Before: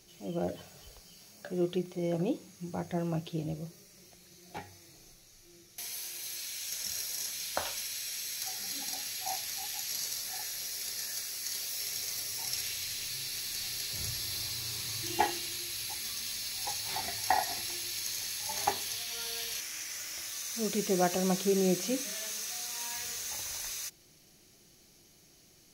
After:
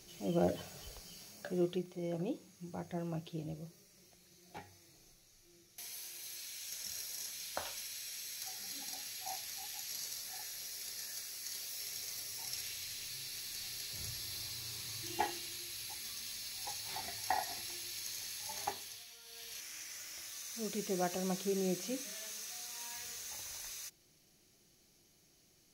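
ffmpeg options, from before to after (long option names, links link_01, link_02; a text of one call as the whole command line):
ffmpeg -i in.wav -af "volume=14dB,afade=type=out:start_time=1.16:duration=0.7:silence=0.354813,afade=type=out:start_time=18.47:duration=0.75:silence=0.237137,afade=type=in:start_time=19.22:duration=0.48:silence=0.251189" out.wav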